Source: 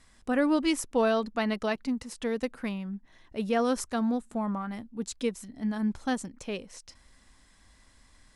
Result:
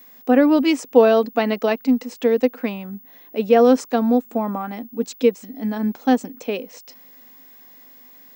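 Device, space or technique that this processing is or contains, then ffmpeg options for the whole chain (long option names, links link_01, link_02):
old television with a line whistle: -af "highpass=frequency=200:width=0.5412,highpass=frequency=200:width=1.3066,equalizer=frequency=260:width_type=q:width=4:gain=9,equalizer=frequency=480:width_type=q:width=4:gain=10,equalizer=frequency=750:width_type=q:width=4:gain=7,equalizer=frequency=2500:width_type=q:width=4:gain=4,lowpass=frequency=7300:width=0.5412,lowpass=frequency=7300:width=1.3066,aeval=exprs='val(0)+0.00355*sin(2*PI*15625*n/s)':channel_layout=same,volume=5dB"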